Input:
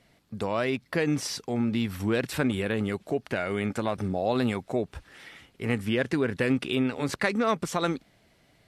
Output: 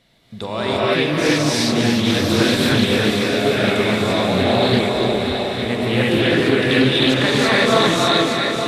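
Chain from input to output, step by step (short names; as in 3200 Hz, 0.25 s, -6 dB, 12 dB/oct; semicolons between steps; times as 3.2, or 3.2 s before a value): regenerating reverse delay 0.428 s, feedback 70%, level -7 dB; bell 3700 Hz +11.5 dB 0.32 oct; on a send: thinning echo 0.293 s, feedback 68%, high-pass 420 Hz, level -7.5 dB; on the sum: non-linear reverb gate 0.37 s rising, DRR -8 dB; Doppler distortion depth 0.22 ms; gain +1.5 dB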